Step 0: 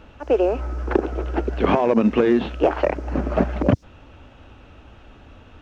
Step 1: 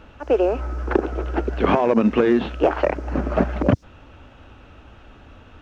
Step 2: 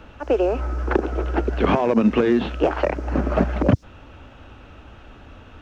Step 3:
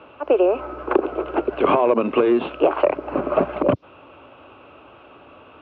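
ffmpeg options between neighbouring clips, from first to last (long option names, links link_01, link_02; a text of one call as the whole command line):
ffmpeg -i in.wav -af "equalizer=frequency=1400:width_type=o:width=0.77:gain=2.5" out.wav
ffmpeg -i in.wav -filter_complex "[0:a]acrossover=split=220|3000[link_01][link_02][link_03];[link_02]acompressor=threshold=-21dB:ratio=2[link_04];[link_01][link_04][link_03]amix=inputs=3:normalize=0,volume=2dB" out.wav
ffmpeg -i in.wav -af "highpass=190,equalizer=frequency=210:width_type=q:width=4:gain=-9,equalizer=frequency=380:width_type=q:width=4:gain=4,equalizer=frequency=590:width_type=q:width=4:gain=5,equalizer=frequency=1100:width_type=q:width=4:gain=7,equalizer=frequency=1800:width_type=q:width=4:gain=-9,equalizer=frequency=2600:width_type=q:width=4:gain=4,lowpass=frequency=3200:width=0.5412,lowpass=frequency=3200:width=1.3066" out.wav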